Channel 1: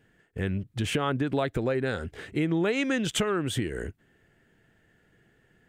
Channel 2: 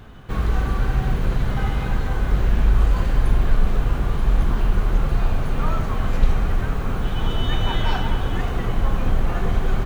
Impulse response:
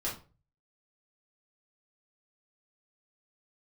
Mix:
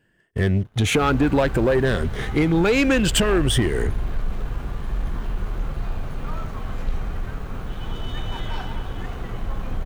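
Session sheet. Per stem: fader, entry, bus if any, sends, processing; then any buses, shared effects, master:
+2.0 dB, 0.00 s, no send, rippled gain that drifts along the octave scale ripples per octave 1.3, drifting +0.63 Hz, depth 8 dB
−15.0 dB, 0.65 s, no send, no processing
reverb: not used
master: leveller curve on the samples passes 2

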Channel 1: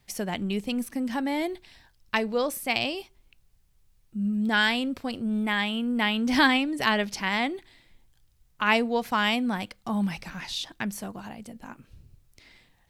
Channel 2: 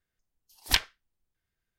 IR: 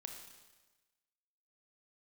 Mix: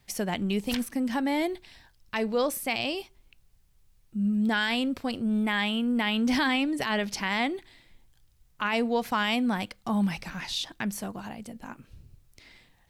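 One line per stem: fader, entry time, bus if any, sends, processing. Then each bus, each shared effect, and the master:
+1.0 dB, 0.00 s, no send, no processing
+1.0 dB, 0.00 s, no send, automatic ducking −19 dB, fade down 1.55 s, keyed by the first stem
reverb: not used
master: brickwall limiter −17 dBFS, peak gain reduction 10.5 dB

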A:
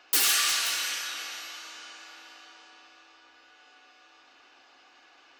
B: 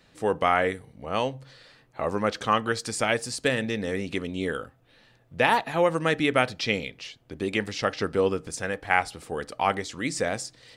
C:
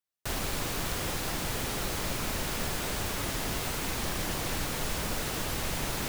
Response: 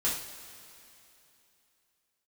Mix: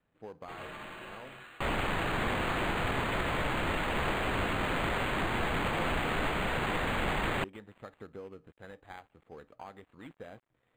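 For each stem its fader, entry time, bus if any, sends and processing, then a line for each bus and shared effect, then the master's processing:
−10.5 dB, 0.35 s, bus A, send −22 dB, low-pass that shuts in the quiet parts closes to 640 Hz, open at −25.5 dBFS
−16.0 dB, 0.00 s, bus A, no send, gap after every zero crossing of 0.13 ms
−1.5 dB, 1.35 s, no bus, no send, high-shelf EQ 7,700 Hz +12 dB
bus A: 0.0 dB, linear-phase brick-wall low-pass 6,900 Hz; downward compressor 6 to 1, threshold −41 dBFS, peak gain reduction 10 dB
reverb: on, pre-delay 3 ms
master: linearly interpolated sample-rate reduction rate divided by 8×

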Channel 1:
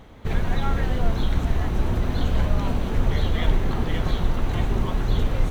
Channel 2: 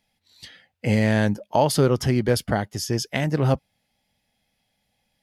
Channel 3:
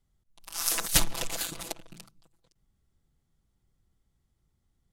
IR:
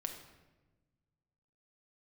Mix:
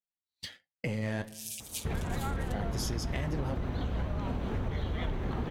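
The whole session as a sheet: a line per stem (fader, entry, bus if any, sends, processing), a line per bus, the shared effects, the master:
−3.0 dB, 1.60 s, no bus, no send, high-pass filter 45 Hz 12 dB per octave; high-shelf EQ 4,800 Hz −10.5 dB; pitch vibrato 7.4 Hz 40 cents
+0.5 dB, 0.00 s, muted 0:01.22–0:02.54, bus A, send −17.5 dB, downward compressor, threshold −22 dBFS, peak gain reduction 8.5 dB; leveller curve on the samples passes 1
−1.0 dB, 0.80 s, bus A, send −23 dB, Chebyshev high-pass with heavy ripple 2,300 Hz, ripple 3 dB; automatic ducking −6 dB, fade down 1.75 s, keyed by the second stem
bus A: 0.0 dB, flanger 1.3 Hz, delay 4.4 ms, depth 8 ms, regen +50%; brickwall limiter −24 dBFS, peak gain reduction 10 dB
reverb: on, RT60 1.2 s, pre-delay 5 ms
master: downward expander −41 dBFS; downward compressor, threshold −29 dBFS, peak gain reduction 9.5 dB

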